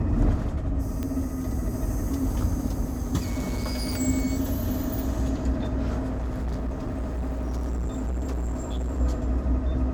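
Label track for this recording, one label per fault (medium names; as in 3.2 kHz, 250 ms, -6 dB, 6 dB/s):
1.030000	1.030000	pop -18 dBFS
3.200000	4.010000	clipped -24 dBFS
6.080000	9.010000	clipped -25.5 dBFS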